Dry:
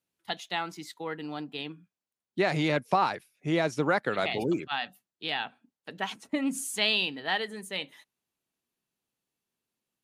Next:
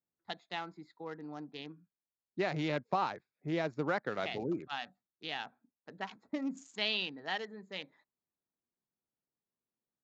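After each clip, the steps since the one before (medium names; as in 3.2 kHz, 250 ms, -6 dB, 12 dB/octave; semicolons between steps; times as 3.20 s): local Wiener filter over 15 samples; steep low-pass 7.2 kHz 96 dB/octave; trim -7 dB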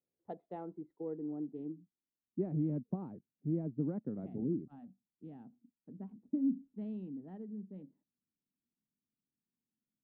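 low-pass sweep 500 Hz -> 240 Hz, 0.41–2.67 s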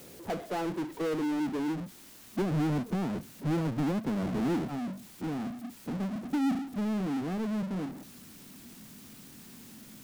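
power-law waveshaper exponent 0.35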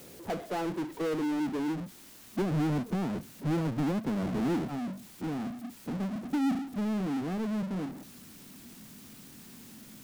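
no audible change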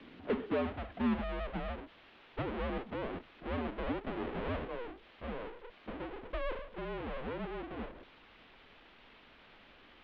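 mistuned SSB -250 Hz 280–3600 Hz; resonant low shelf 180 Hz -9 dB, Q 1.5; trim +1 dB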